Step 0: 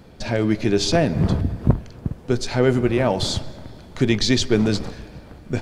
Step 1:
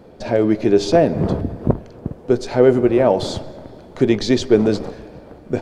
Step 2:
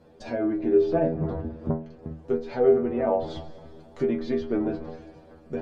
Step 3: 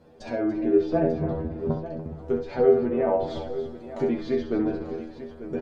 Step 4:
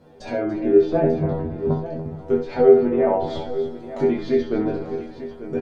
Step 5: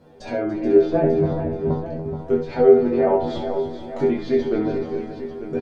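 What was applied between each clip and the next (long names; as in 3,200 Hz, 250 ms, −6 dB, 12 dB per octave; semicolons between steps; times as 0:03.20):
parametric band 490 Hz +13 dB 2.4 octaves; level −5.5 dB
treble cut that deepens with the level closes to 1,700 Hz, closed at −14 dBFS; stiff-string resonator 78 Hz, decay 0.37 s, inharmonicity 0.002
multi-tap delay 66/288/893 ms −8/−13/−12.5 dB
double-tracking delay 20 ms −3.5 dB; level +2.5 dB
single-tap delay 430 ms −10 dB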